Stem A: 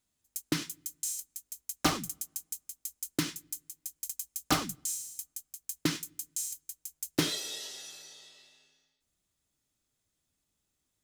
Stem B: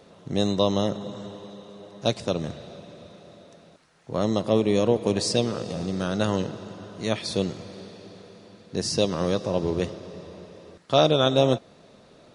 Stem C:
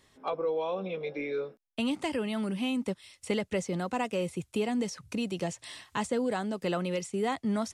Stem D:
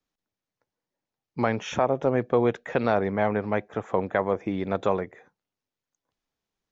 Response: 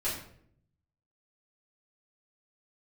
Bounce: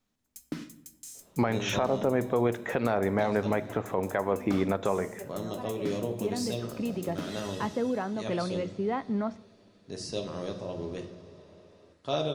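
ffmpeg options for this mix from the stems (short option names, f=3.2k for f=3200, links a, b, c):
-filter_complex "[0:a]equalizer=f=220:t=o:w=0.37:g=13,alimiter=limit=-22dB:level=0:latency=1:release=268,highshelf=f=2.5k:g=-11.5,volume=-0.5dB,asplit=2[a][b];[b]volume=-13dB[c];[1:a]adelay=1150,volume=-14dB,asplit=2[d][e];[e]volume=-8dB[f];[2:a]lowpass=1.8k,adelay=1650,volume=-0.5dB,asplit=2[g][h];[h]volume=-21.5dB[i];[3:a]volume=2.5dB,asplit=3[j][k][l];[k]volume=-19dB[m];[l]apad=whole_len=413682[n];[g][n]sidechaincompress=threshold=-34dB:ratio=8:attack=16:release=1330[o];[4:a]atrim=start_sample=2205[p];[c][f][i][m]amix=inputs=4:normalize=0[q];[q][p]afir=irnorm=-1:irlink=0[r];[a][d][o][j][r]amix=inputs=5:normalize=0,alimiter=limit=-15dB:level=0:latency=1:release=224"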